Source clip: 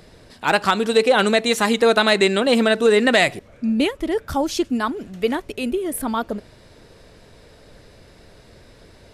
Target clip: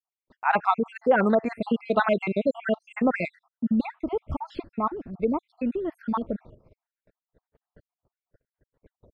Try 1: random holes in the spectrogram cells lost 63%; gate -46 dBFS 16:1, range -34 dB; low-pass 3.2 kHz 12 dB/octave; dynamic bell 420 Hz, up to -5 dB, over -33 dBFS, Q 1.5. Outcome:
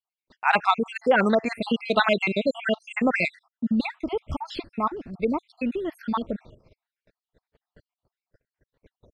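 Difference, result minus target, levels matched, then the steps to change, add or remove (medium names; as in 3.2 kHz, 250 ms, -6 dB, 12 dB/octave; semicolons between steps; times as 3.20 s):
4 kHz band +11.0 dB
change: low-pass 1.4 kHz 12 dB/octave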